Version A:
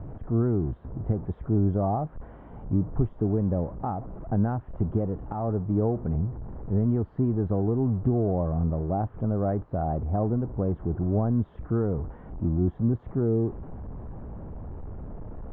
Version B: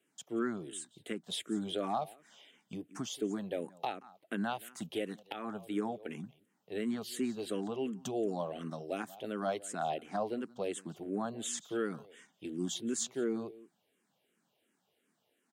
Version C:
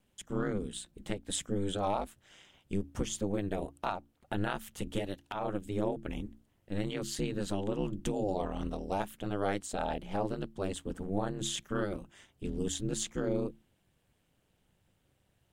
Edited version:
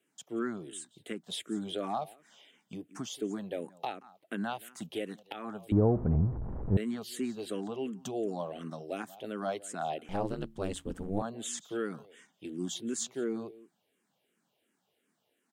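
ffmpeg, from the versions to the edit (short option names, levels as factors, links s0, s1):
-filter_complex "[1:a]asplit=3[s0][s1][s2];[s0]atrim=end=5.722[s3];[0:a]atrim=start=5.718:end=6.772[s4];[s1]atrim=start=6.768:end=10.092[s5];[2:a]atrim=start=10.088:end=11.222[s6];[s2]atrim=start=11.218[s7];[s3][s4]acrossfade=d=0.004:c1=hsin:c2=hsin[s8];[s8][s5]acrossfade=d=0.004:c1=hsin:c2=hsin[s9];[s9][s6]acrossfade=d=0.004:c1=hsin:c2=hsin[s10];[s10][s7]acrossfade=d=0.004:c1=hsin:c2=hsin"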